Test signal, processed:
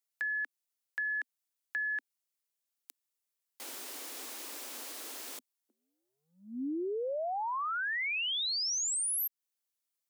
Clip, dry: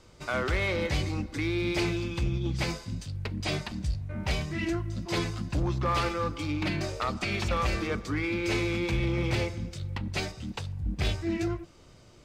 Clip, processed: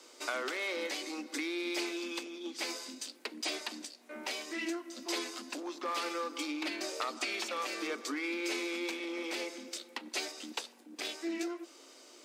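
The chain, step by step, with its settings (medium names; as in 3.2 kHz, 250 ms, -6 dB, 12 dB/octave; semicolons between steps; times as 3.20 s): treble shelf 3.8 kHz +10 dB; compression, threshold -32 dBFS; steep high-pass 250 Hz 72 dB/octave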